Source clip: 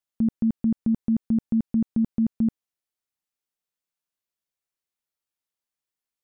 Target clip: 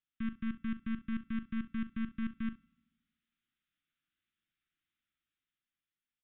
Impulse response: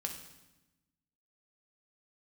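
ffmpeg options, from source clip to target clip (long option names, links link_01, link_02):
-filter_complex "[0:a]dynaudnorm=framelen=230:gausssize=11:maxgain=7dB,alimiter=limit=-18dB:level=0:latency=1,aeval=exprs='(tanh(63.1*val(0)+0.55)-tanh(0.55))/63.1':channel_layout=same,aecho=1:1:40|66:0.224|0.141,asplit=2[link_01][link_02];[1:a]atrim=start_sample=2205[link_03];[link_02][link_03]afir=irnorm=-1:irlink=0,volume=-19dB[link_04];[link_01][link_04]amix=inputs=2:normalize=0,aresample=8000,aresample=44100,asuperstop=centerf=650:order=12:qfactor=0.74,volume=1dB"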